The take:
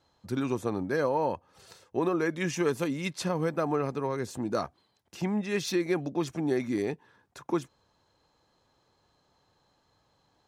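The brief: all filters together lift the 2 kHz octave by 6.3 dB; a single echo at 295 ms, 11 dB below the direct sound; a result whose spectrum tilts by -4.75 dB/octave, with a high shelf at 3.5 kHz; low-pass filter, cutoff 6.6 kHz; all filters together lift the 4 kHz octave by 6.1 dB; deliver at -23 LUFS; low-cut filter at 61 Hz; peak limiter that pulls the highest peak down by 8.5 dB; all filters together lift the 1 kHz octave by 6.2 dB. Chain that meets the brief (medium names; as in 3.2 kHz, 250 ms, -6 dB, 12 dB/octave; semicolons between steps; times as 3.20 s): high-pass 61 Hz; low-pass 6.6 kHz; peaking EQ 1 kHz +6 dB; peaking EQ 2 kHz +4 dB; treble shelf 3.5 kHz +4 dB; peaking EQ 4 kHz +4 dB; peak limiter -19 dBFS; delay 295 ms -11 dB; trim +7.5 dB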